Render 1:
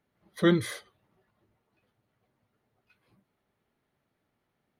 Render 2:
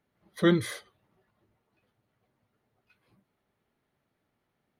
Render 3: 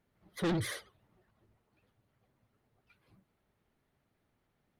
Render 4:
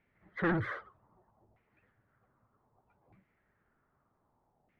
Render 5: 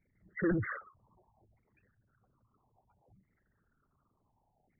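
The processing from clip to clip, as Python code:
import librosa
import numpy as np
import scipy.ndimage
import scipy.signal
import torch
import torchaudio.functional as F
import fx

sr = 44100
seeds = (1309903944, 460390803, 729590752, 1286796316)

y1 = x
y2 = fx.low_shelf(y1, sr, hz=79.0, db=11.0)
y2 = fx.vibrato(y2, sr, rate_hz=14.0, depth_cents=99.0)
y2 = 10.0 ** (-27.0 / 20.0) * np.tanh(y2 / 10.0 ** (-27.0 / 20.0))
y2 = F.gain(torch.from_numpy(y2), -1.0).numpy()
y3 = fx.filter_lfo_lowpass(y2, sr, shape='saw_down', hz=0.64, low_hz=750.0, high_hz=2300.0, q=3.6)
y4 = fx.envelope_sharpen(y3, sr, power=3.0)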